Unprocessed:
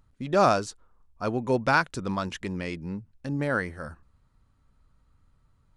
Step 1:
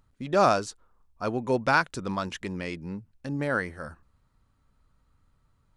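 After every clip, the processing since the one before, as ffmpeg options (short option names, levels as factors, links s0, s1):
-af "lowshelf=f=200:g=-3.5"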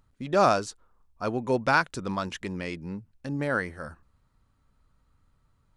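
-af anull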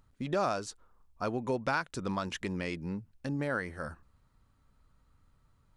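-af "acompressor=threshold=0.0282:ratio=2.5"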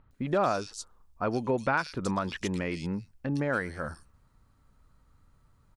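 -filter_complex "[0:a]acrossover=split=3100[s0][s1];[s1]adelay=110[s2];[s0][s2]amix=inputs=2:normalize=0,volume=1.58"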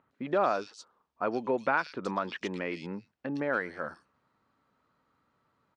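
-af "highpass=270,lowpass=3700"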